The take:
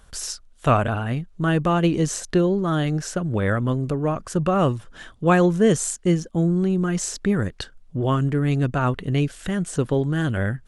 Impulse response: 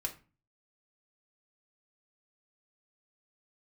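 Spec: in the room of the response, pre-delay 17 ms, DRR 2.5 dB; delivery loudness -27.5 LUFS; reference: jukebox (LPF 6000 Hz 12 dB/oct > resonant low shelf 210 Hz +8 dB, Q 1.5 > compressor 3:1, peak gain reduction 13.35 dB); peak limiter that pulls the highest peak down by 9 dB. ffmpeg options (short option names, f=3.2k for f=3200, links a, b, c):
-filter_complex "[0:a]alimiter=limit=-14.5dB:level=0:latency=1,asplit=2[a][b];[1:a]atrim=start_sample=2205,adelay=17[c];[b][c]afir=irnorm=-1:irlink=0,volume=-3.5dB[d];[a][d]amix=inputs=2:normalize=0,lowpass=6k,lowshelf=f=210:t=q:w=1.5:g=8,acompressor=threshold=-24dB:ratio=3,volume=-2dB"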